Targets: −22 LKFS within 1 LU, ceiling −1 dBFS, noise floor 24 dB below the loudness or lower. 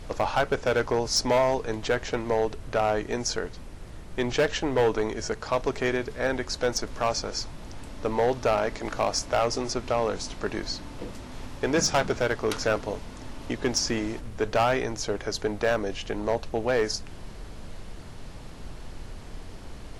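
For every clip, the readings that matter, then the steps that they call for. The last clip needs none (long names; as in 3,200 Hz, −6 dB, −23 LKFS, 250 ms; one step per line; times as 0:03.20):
share of clipped samples 1.1%; peaks flattened at −16.5 dBFS; background noise floor −41 dBFS; target noise floor −52 dBFS; integrated loudness −27.5 LKFS; sample peak −16.5 dBFS; target loudness −22.0 LKFS
→ clipped peaks rebuilt −16.5 dBFS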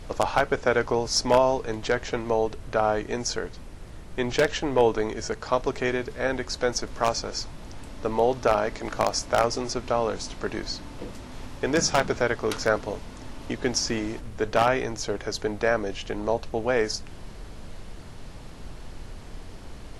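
share of clipped samples 0.0%; background noise floor −41 dBFS; target noise floor −50 dBFS
→ noise reduction from a noise print 9 dB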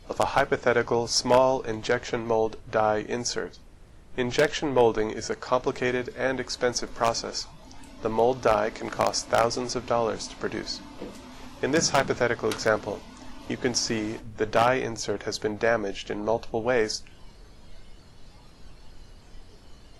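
background noise floor −50 dBFS; integrated loudness −26.0 LKFS; sample peak −7.5 dBFS; target loudness −22.0 LKFS
→ level +4 dB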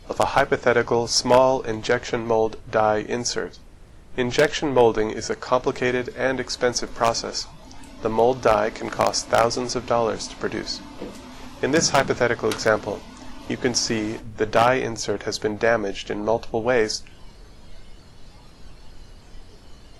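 integrated loudness −22.0 LKFS; sample peak −3.5 dBFS; background noise floor −46 dBFS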